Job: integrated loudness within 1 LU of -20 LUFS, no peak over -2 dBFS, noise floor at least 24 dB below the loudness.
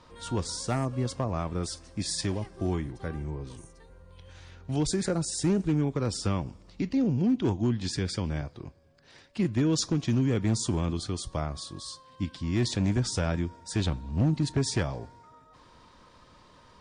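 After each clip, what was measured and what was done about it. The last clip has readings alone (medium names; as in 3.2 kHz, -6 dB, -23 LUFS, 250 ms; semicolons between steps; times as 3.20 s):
clipped samples 0.7%; clipping level -19.0 dBFS; loudness -29.5 LUFS; peak level -19.0 dBFS; loudness target -20.0 LUFS
-> clip repair -19 dBFS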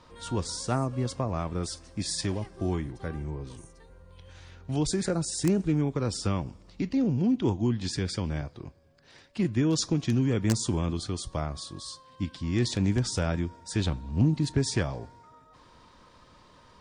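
clipped samples 0.0%; loudness -29.0 LUFS; peak level -10.0 dBFS; loudness target -20.0 LUFS
-> trim +9 dB; peak limiter -2 dBFS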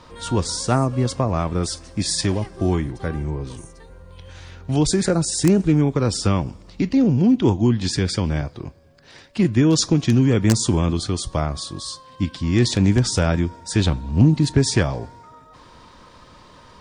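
loudness -20.0 LUFS; peak level -2.0 dBFS; noise floor -47 dBFS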